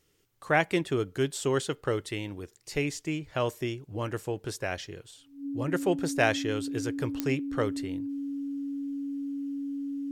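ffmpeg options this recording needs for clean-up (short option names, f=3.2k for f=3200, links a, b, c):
-af "adeclick=t=4,bandreject=f=280:w=30"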